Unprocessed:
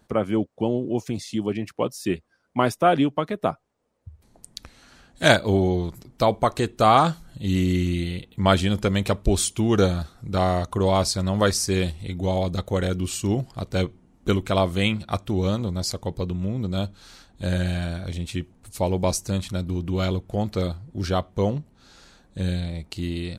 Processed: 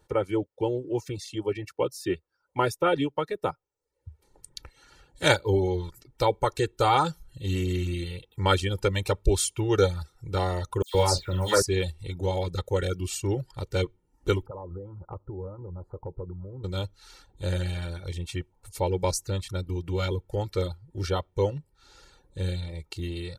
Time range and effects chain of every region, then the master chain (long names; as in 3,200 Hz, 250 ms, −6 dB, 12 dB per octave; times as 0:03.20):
0:10.82–0:11.62: one scale factor per block 7 bits + double-tracking delay 44 ms −7 dB + all-pass dispersion lows, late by 122 ms, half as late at 2,600 Hz
0:14.46–0:16.64: elliptic low-pass filter 1,200 Hz, stop band 50 dB + downward compressor 16 to 1, threshold −28 dBFS
whole clip: reverb reduction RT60 0.51 s; parametric band 240 Hz +3 dB 0.33 octaves; comb filter 2.2 ms, depth 98%; level −5.5 dB